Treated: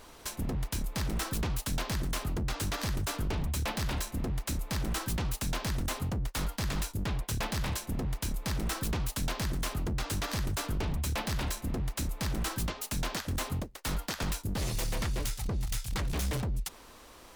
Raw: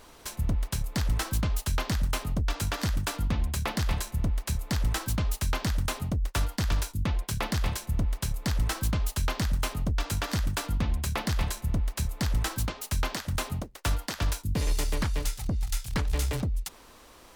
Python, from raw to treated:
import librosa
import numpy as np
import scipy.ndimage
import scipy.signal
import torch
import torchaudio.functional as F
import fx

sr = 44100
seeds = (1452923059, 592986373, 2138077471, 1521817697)

y = 10.0 ** (-26.5 / 20.0) * (np.abs((x / 10.0 ** (-26.5 / 20.0) + 3.0) % 4.0 - 2.0) - 1.0)